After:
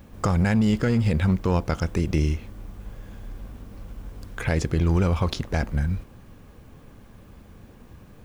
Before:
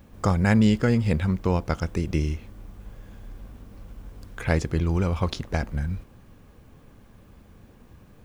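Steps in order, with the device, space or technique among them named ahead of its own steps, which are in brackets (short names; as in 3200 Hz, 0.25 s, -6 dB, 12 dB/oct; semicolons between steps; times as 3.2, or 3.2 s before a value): limiter into clipper (limiter -15 dBFS, peak gain reduction 7 dB; hard clip -17 dBFS, distortion -25 dB); gain +3.5 dB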